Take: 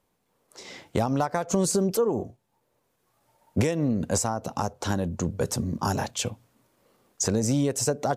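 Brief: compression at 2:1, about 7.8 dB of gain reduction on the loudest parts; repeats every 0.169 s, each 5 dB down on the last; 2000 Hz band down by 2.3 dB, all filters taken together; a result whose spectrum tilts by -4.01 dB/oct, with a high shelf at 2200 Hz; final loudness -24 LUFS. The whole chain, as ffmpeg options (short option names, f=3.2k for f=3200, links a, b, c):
-af "equalizer=f=2k:t=o:g=-7.5,highshelf=f=2.2k:g=7.5,acompressor=threshold=-32dB:ratio=2,aecho=1:1:169|338|507|676|845|1014|1183:0.562|0.315|0.176|0.0988|0.0553|0.031|0.0173,volume=6.5dB"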